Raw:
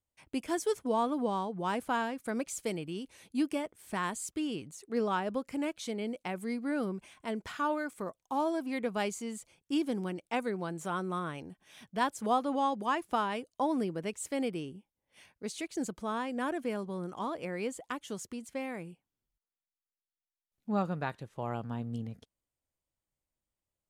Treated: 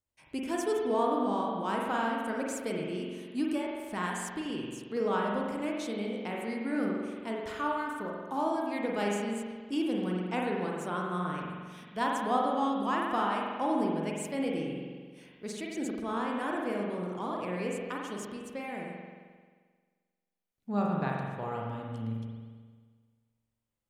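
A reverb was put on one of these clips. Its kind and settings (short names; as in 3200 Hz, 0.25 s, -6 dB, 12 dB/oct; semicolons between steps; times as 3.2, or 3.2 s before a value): spring tank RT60 1.6 s, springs 44 ms, chirp 80 ms, DRR -2 dB; gain -2 dB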